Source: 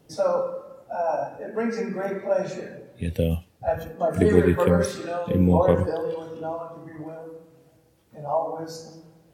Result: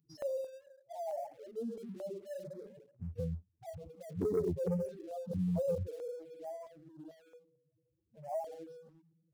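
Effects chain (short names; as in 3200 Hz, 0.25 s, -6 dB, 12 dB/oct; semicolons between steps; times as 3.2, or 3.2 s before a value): spectral contrast raised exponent 3.6; sample leveller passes 1; pre-emphasis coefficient 0.8; stepped notch 4.5 Hz 550–3700 Hz; gain -2.5 dB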